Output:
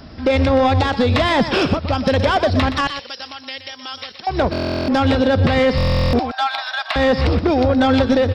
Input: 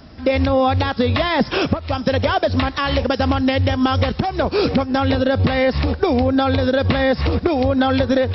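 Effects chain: 2.87–4.27 s: differentiator; 6.19–6.96 s: Chebyshev high-pass 620 Hz, order 10; saturation -12.5 dBFS, distortion -16 dB; delay 122 ms -11 dB; buffer glitch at 4.51/5.76 s, samples 1024, times 15; trim +3.5 dB

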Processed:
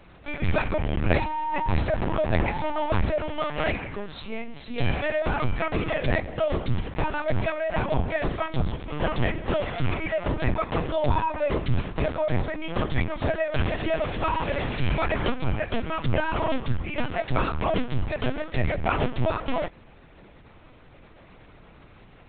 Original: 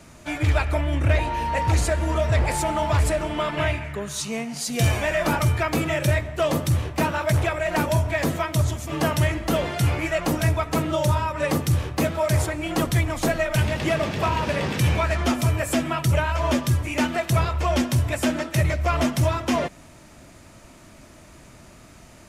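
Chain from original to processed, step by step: 10.63–11.81 s: comb 2 ms, depth 49%; LPC vocoder at 8 kHz pitch kept; trim -2.5 dB

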